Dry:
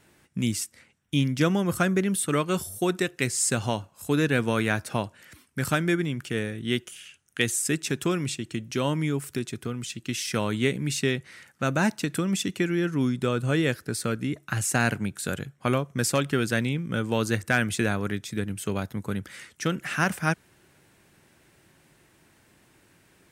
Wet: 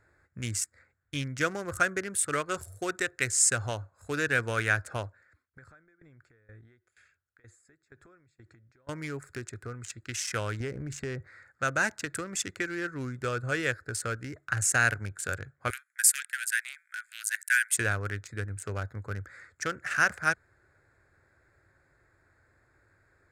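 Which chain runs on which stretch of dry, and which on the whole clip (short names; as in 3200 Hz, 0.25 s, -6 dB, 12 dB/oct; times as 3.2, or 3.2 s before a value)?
5.06–8.89 high shelf 9600 Hz -7.5 dB + compressor 12:1, threshold -37 dBFS + dB-ramp tremolo decaying 2.1 Hz, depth 19 dB
10.6–11.27 tilt shelf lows +6.5 dB, about 1200 Hz + compressor 4:1, threshold -21 dBFS
15.7–17.77 steep high-pass 1500 Hz 72 dB/oct + resonant high shelf 7900 Hz +9.5 dB, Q 1.5
whole clip: Wiener smoothing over 15 samples; EQ curve 100 Hz 0 dB, 180 Hz -18 dB, 530 Hz -4 dB, 960 Hz -8 dB, 1500 Hz +5 dB, 3400 Hz -5 dB, 7000 Hz +5 dB, 13000 Hz -4 dB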